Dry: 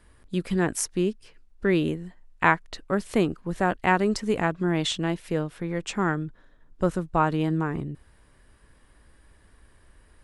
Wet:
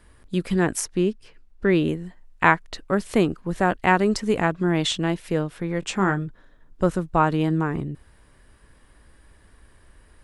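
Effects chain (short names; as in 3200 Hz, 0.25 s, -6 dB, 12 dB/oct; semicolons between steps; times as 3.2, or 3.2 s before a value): 0.8–1.89 high shelf 5700 Hz -6.5 dB; 5.8–6.27 doubler 21 ms -8.5 dB; gain +3 dB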